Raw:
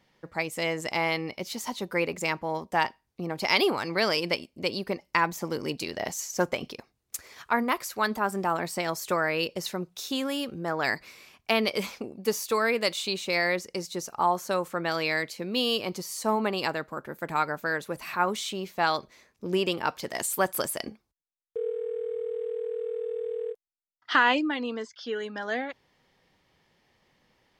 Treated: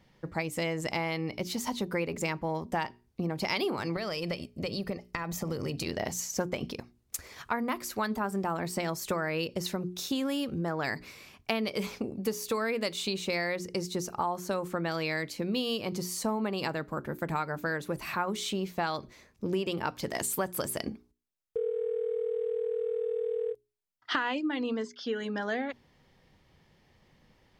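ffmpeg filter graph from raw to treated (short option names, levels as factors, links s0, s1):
-filter_complex "[0:a]asettb=1/sr,asplit=3[s0][s1][s2];[s0]atrim=end=3.964[s3];[s1]atrim=start=3.96:end=5.86,asetpts=PTS-STARTPTS,afade=t=in:d=0.004:c=qsin,afade=t=out:st=1.896:d=0.004:c=qsin,acompressor=threshold=0.0316:ratio=6:attack=3.2:release=140:knee=1:detection=peak,aecho=1:1:1.6:0.33,atrim=end_sample=83790[s4];[s2]atrim=start=5.856[s5];[s3][s4]acrossfade=d=0.004:c1=hsin:c2=qsin[s6];[s6][s5]acrossfade=d=0.004:c1=qsin:c2=hsin,lowshelf=f=250:g=11.5,bandreject=f=60:t=h:w=6,bandreject=f=120:t=h:w=6,bandreject=f=180:t=h:w=6,bandreject=f=240:t=h:w=6,bandreject=f=300:t=h:w=6,bandreject=f=360:t=h:w=6,bandreject=f=420:t=h:w=6,acompressor=threshold=0.0398:ratio=4"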